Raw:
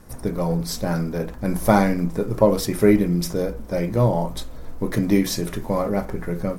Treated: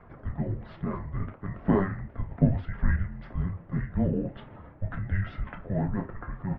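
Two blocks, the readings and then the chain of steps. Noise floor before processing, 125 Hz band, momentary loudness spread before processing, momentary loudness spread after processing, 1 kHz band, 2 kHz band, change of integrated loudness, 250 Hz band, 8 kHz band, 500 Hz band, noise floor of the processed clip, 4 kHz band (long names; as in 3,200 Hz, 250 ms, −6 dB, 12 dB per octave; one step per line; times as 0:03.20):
−35 dBFS, −4.5 dB, 10 LU, 12 LU, −13.0 dB, −8.5 dB, −9.0 dB, −9.5 dB, below −40 dB, −15.0 dB, −50 dBFS, below −20 dB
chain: spectral magnitudes quantised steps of 15 dB
dynamic equaliser 1,300 Hz, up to −4 dB, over −41 dBFS, Q 1.9
reversed playback
upward compression, threshold −19 dBFS
reversed playback
single-sideband voice off tune −390 Hz 310–2,600 Hz
double-tracking delay 30 ms −13 dB
level −3.5 dB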